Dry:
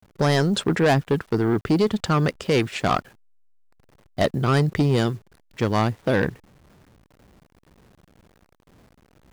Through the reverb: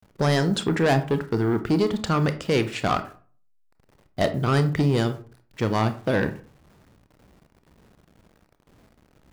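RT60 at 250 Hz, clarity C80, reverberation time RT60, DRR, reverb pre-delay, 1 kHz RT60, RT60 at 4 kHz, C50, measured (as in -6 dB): 0.45 s, 18.0 dB, 0.40 s, 9.5 dB, 25 ms, 0.40 s, 0.25 s, 14.0 dB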